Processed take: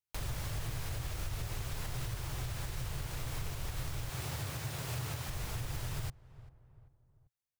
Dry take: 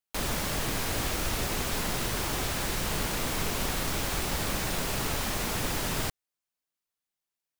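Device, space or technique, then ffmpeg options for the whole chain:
car stereo with a boomy subwoofer: -filter_complex "[0:a]asettb=1/sr,asplit=3[a][b][c];[a]atrim=end=4.114[d];[b]atrim=start=4.11:end=5.29,asetpts=PTS-STARTPTS,afade=t=in:d=0.004:c=qsin,afade=t=out:st=1.176:d=0.004:c=qsin,highpass=f=85:w=0.5412,highpass=f=85:w=1.3066[e];[c]atrim=start=5.286[f];[d][e]acrossfade=d=0.004:c1=hsin:c2=qsin[g];[g][f]acrossfade=d=0.004:c1=qsin:c2=hsin,lowshelf=f=160:t=q:w=3:g=8.5,asplit=2[h][i];[i]adelay=391,lowpass=f=1.2k:p=1,volume=-23dB,asplit=2[j][k];[k]adelay=391,lowpass=f=1.2k:p=1,volume=0.49,asplit=2[l][m];[m]adelay=391,lowpass=f=1.2k:p=1,volume=0.49[n];[h][j][l][n]amix=inputs=4:normalize=0,alimiter=limit=-21.5dB:level=0:latency=1:release=286,volume=-7dB"

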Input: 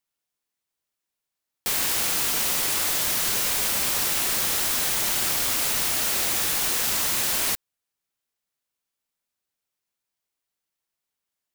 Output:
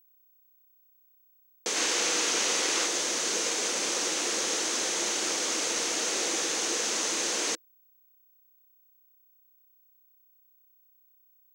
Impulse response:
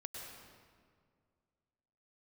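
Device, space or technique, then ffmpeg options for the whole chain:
old television with a line whistle: -filter_complex "[0:a]asettb=1/sr,asplit=3[a][b][c];[a]atrim=end=1.764[d];[b]atrim=start=1.76:end=2.86,asetpts=PTS-STARTPTS,afade=t=in:d=0.004:c=qsin,afade=t=out:st=1.096:d=0.004:c=qsin,equalizer=f=2.1k:t=o:w=2.9:g=4[e];[c]atrim=start=2.856[f];[d][e]acrossfade=d=0.004:c1=hsin:c2=qsin[g];[g][f]acrossfade=d=0.004:c1=qsin:c2=hsin,highpass=f=210:w=0.5412,highpass=f=210:w=1.3066,equalizer=f=330:t=q:w=4:g=9,equalizer=f=480:t=q:w=4:g=10,equalizer=f=6.3k:t=q:w=4:g=8,lowpass=f=7.7k:w=0.5412,lowpass=f=7.7k:w=1.3066,aeval=exprs='val(0)+0.00141*sin(2*PI*15734*n/s)':c=same,volume=-3.5dB"

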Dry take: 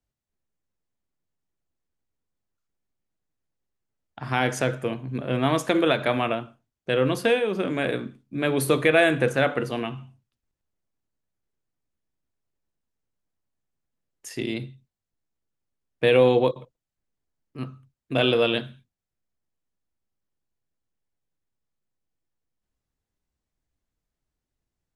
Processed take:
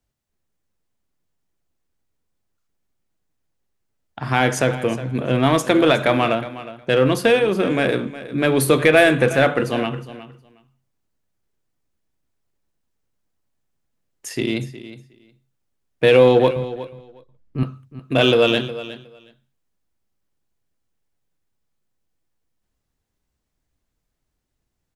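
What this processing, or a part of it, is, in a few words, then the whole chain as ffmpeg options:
parallel distortion: -filter_complex "[0:a]asettb=1/sr,asplit=3[a][b][c];[a]atrim=end=16.564[d];[b]atrim=start=16.56:end=17.63,asetpts=PTS-STARTPTS,afade=t=in:d=0.004:c=qsin,afade=t=out:st=1.066:d=0.004:c=qsin,aemphasis=mode=reproduction:type=bsi[e];[c]atrim=start=17.626[f];[d][e]acrossfade=d=0.004:c1=hsin:c2=qsin[g];[g][f]acrossfade=d=0.004:c1=qsin:c2=hsin,asplit=2[h][i];[i]asoftclip=type=hard:threshold=-21.5dB,volume=-8.5dB[j];[h][j]amix=inputs=2:normalize=0,aecho=1:1:363|726:0.178|0.0267,volume=4dB"

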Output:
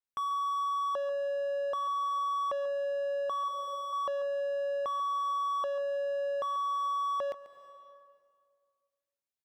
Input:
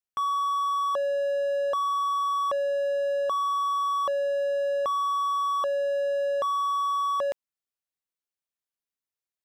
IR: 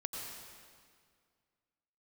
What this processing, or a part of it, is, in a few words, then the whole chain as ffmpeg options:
compressed reverb return: -filter_complex "[0:a]asplit=2[a][b];[1:a]atrim=start_sample=2205[c];[b][c]afir=irnorm=-1:irlink=0,acompressor=threshold=-35dB:ratio=6,volume=-5.5dB[d];[a][d]amix=inputs=2:normalize=0,asettb=1/sr,asplit=3[e][f][g];[e]atrim=end=3.484[h];[f]atrim=start=3.48:end=3.93,asetpts=PTS-STARTPTS,afade=t=in:d=0.004:c=qsin,afade=t=out:st=0.446:d=0.004:c=qsin,lowshelf=f=770:t=q:w=3:g=9.5[i];[g]atrim=start=3.926[j];[h][i]acrossfade=d=0.004:c1=hsin:c2=qsin[k];[k][j]acrossfade=d=0.004:c1=qsin:c2=hsin,asplit=2[l][m];[m]adelay=139.9,volume=-15dB,highshelf=f=4k:g=-3.15[n];[l][n]amix=inputs=2:normalize=0,adynamicequalizer=threshold=0.00282:dfrequency=5900:dqfactor=0.7:tfrequency=5900:tqfactor=0.7:attack=5:release=100:ratio=0.375:range=3:mode=cutabove:tftype=highshelf,volume=-7.5dB"

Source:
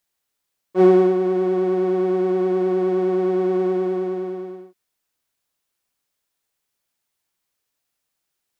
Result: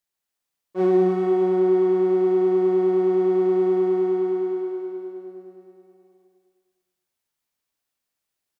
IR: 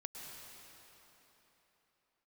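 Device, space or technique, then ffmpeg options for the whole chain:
cave: -filter_complex "[0:a]aecho=1:1:295:0.335[a];[1:a]atrim=start_sample=2205[b];[a][b]afir=irnorm=-1:irlink=0,volume=-2dB"

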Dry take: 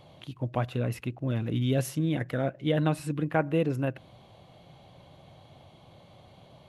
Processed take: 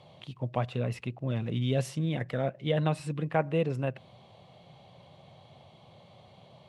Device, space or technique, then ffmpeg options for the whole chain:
car door speaker: -af "highpass=98,equalizer=f=300:t=q:w=4:g=-9,equalizer=f=1.5k:t=q:w=4:g=-5,equalizer=f=6.6k:t=q:w=4:g=-4,lowpass=f=8.8k:w=0.5412,lowpass=f=8.8k:w=1.3066"

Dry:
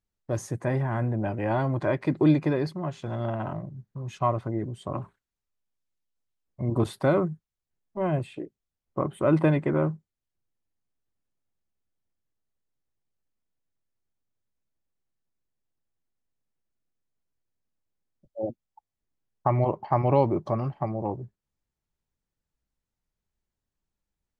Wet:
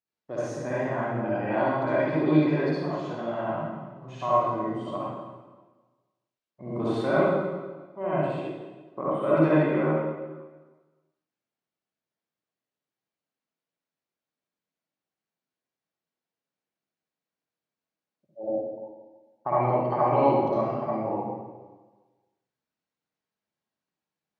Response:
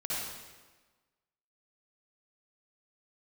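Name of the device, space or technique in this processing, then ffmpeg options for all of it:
supermarket ceiling speaker: -filter_complex "[0:a]highpass=240,lowpass=5k[a];[1:a]atrim=start_sample=2205[b];[a][b]afir=irnorm=-1:irlink=0,volume=-2dB"

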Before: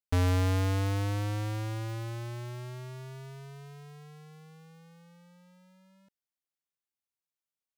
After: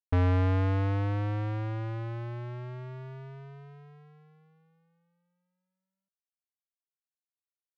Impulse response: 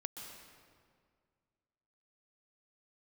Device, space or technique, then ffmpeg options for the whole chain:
hearing-loss simulation: -af "lowpass=2.1k,agate=range=-33dB:threshold=-46dB:ratio=3:detection=peak,volume=1.5dB"

